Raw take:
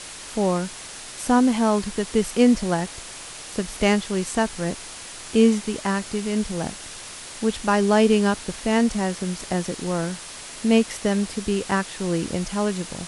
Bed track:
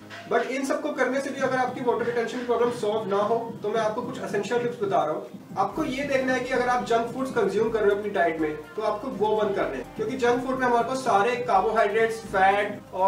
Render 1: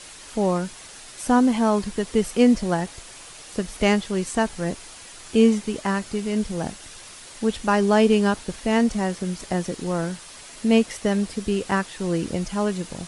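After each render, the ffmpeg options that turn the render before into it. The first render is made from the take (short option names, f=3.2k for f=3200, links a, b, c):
-af "afftdn=nr=6:nf=-38"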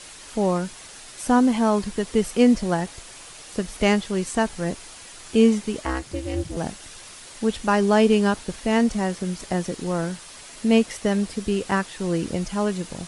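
-filter_complex "[0:a]asettb=1/sr,asplit=3[a][b][c];[a]atrim=end=5.854[d];[b]atrim=start=5.85:end=6.57,asetpts=PTS-STARTPTS,afade=t=in:d=0.004:c=qsin,afade=t=out:st=0.716:d=0.004:c=qsin,aeval=exprs='val(0)*sin(2*PI*130*n/s)':c=same[e];[c]atrim=start=6.566[f];[d][e]acrossfade=d=0.004:c1=hsin:c2=qsin[g];[g][f]acrossfade=d=0.004:c1=qsin:c2=hsin"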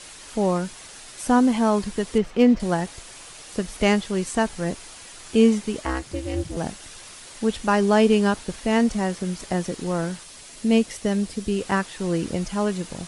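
-filter_complex "[0:a]asettb=1/sr,asplit=3[a][b][c];[a]atrim=end=2.184[d];[b]atrim=start=2.18:end=2.6,asetpts=PTS-STARTPTS,afade=t=in:d=0.004:c=qsin,afade=t=out:st=0.416:d=0.004:c=qsin,adynamicsmooth=sensitivity=1.5:basefreq=2.9k[e];[c]atrim=start=2.596[f];[d][e]acrossfade=d=0.004:c1=hsin:c2=qsin[g];[g][f]acrossfade=d=0.004:c1=qsin:c2=hsin,asettb=1/sr,asplit=3[h][i][j];[h]atrim=end=10.234[k];[i]atrim=start=10.23:end=11.59,asetpts=PTS-STARTPTS,afade=t=in:d=0.004:c=qsin,afade=t=out:st=1.356:d=0.004:c=qsin,equalizer=f=1.2k:t=o:w=2.4:g=-4.5[l];[j]atrim=start=11.586[m];[k][l]acrossfade=d=0.004:c1=hsin:c2=qsin[n];[n][m]acrossfade=d=0.004:c1=qsin:c2=hsin"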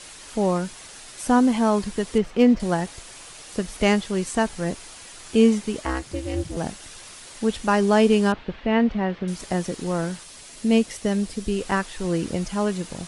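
-filter_complex "[0:a]asettb=1/sr,asplit=3[a][b][c];[a]atrim=end=8.324[d];[b]atrim=start=8.32:end=9.28,asetpts=PTS-STARTPTS,afade=t=in:d=0.004:c=qsin,afade=t=out:st=0.956:d=0.004:c=qsin,lowpass=f=3.3k:w=0.5412,lowpass=f=3.3k:w=1.3066[e];[c]atrim=start=9.276[f];[d][e]acrossfade=d=0.004:c1=hsin:c2=qsin[g];[g][f]acrossfade=d=0.004:c1=qsin:c2=hsin,asettb=1/sr,asplit=3[h][i][j];[h]atrim=end=11.114[k];[i]atrim=start=11.11:end=12.05,asetpts=PTS-STARTPTS,afade=t=in:d=0.004:c=qsin,afade=t=out:st=0.936:d=0.004:c=qsin,asubboost=boost=11.5:cutoff=61[l];[j]atrim=start=12.046[m];[k][l]acrossfade=d=0.004:c1=hsin:c2=qsin[n];[n][m]acrossfade=d=0.004:c1=qsin:c2=hsin"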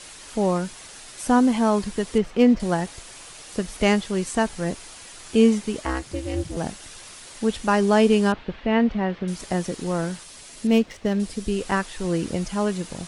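-filter_complex "[0:a]asettb=1/sr,asplit=3[a][b][c];[a]atrim=end=10.674[d];[b]atrim=start=10.67:end=11.2,asetpts=PTS-STARTPTS,afade=t=in:d=0.004:c=qsin,afade=t=out:st=0.526:d=0.004:c=qsin,adynamicsmooth=sensitivity=5.5:basefreq=2.5k[e];[c]atrim=start=11.196[f];[d][e]acrossfade=d=0.004:c1=hsin:c2=qsin[g];[g][f]acrossfade=d=0.004:c1=qsin:c2=hsin"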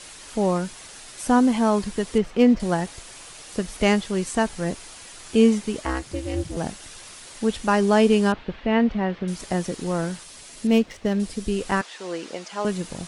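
-filter_complex "[0:a]asettb=1/sr,asplit=3[a][b][c];[a]atrim=end=11.814[d];[b]atrim=start=11.81:end=12.65,asetpts=PTS-STARTPTS,afade=t=in:d=0.004:c=qsin,afade=t=out:st=0.836:d=0.004:c=qsin,highpass=480,lowpass=6.4k[e];[c]atrim=start=12.646[f];[d][e]acrossfade=d=0.004:c1=hsin:c2=qsin[g];[g][f]acrossfade=d=0.004:c1=qsin:c2=hsin"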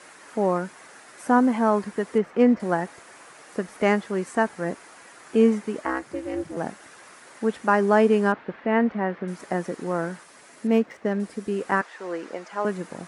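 -af "highpass=220,highshelf=f=2.4k:t=q:w=1.5:g=-9.5"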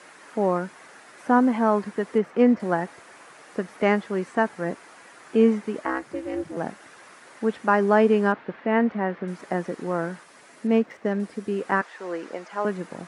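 -filter_complex "[0:a]highpass=81,acrossover=split=4800[a][b];[b]acompressor=threshold=-56dB:ratio=4:attack=1:release=60[c];[a][c]amix=inputs=2:normalize=0"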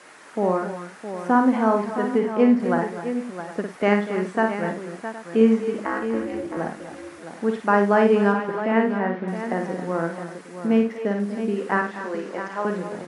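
-af "aecho=1:1:54|98|243|272|664|766:0.531|0.178|0.2|0.211|0.316|0.141"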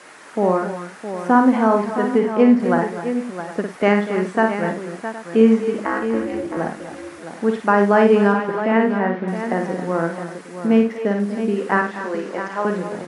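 -af "volume=4dB,alimiter=limit=-3dB:level=0:latency=1"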